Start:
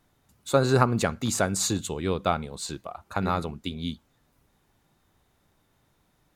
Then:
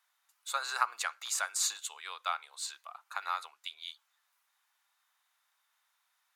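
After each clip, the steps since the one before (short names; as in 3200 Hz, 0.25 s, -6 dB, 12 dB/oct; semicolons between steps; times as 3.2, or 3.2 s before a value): inverse Chebyshev high-pass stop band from 170 Hz, stop band 80 dB; gain -3.5 dB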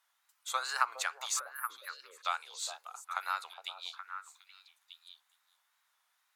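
spectral delete 1.39–2.24, 610–10000 Hz; wow and flutter 98 cents; delay with a stepping band-pass 0.413 s, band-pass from 560 Hz, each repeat 1.4 oct, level -4.5 dB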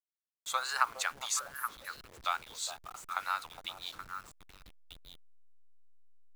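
level-crossing sampler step -48 dBFS; gain +1 dB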